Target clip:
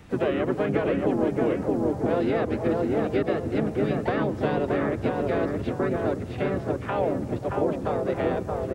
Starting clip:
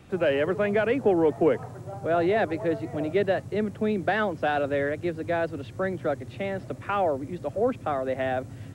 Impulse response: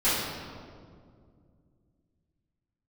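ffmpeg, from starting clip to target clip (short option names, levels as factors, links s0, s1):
-filter_complex "[0:a]asplit=4[s0][s1][s2][s3];[s1]asetrate=29433,aresample=44100,atempo=1.49831,volume=0.631[s4];[s2]asetrate=33038,aresample=44100,atempo=1.33484,volume=0.708[s5];[s3]asetrate=55563,aresample=44100,atempo=0.793701,volume=0.316[s6];[s0][s4][s5][s6]amix=inputs=4:normalize=0,asplit=2[s7][s8];[s8]adelay=623,lowpass=f=1200:p=1,volume=0.708,asplit=2[s9][s10];[s10]adelay=623,lowpass=f=1200:p=1,volume=0.31,asplit=2[s11][s12];[s12]adelay=623,lowpass=f=1200:p=1,volume=0.31,asplit=2[s13][s14];[s14]adelay=623,lowpass=f=1200:p=1,volume=0.31[s15];[s7][s9][s11][s13][s15]amix=inputs=5:normalize=0,asplit=2[s16][s17];[1:a]atrim=start_sample=2205,adelay=93[s18];[s17][s18]afir=irnorm=-1:irlink=0,volume=0.0168[s19];[s16][s19]amix=inputs=2:normalize=0,acrossover=split=630|2500[s20][s21][s22];[s20]acompressor=threshold=0.0794:ratio=4[s23];[s21]acompressor=threshold=0.0224:ratio=4[s24];[s22]acompressor=threshold=0.00631:ratio=4[s25];[s23][s24][s25]amix=inputs=3:normalize=0"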